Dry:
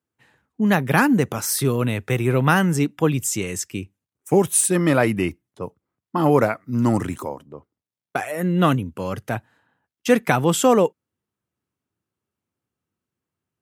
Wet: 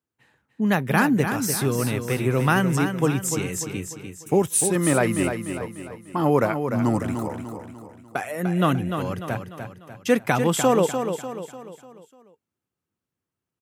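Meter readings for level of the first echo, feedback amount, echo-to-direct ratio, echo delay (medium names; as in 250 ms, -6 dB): -7.5 dB, 45%, -6.5 dB, 297 ms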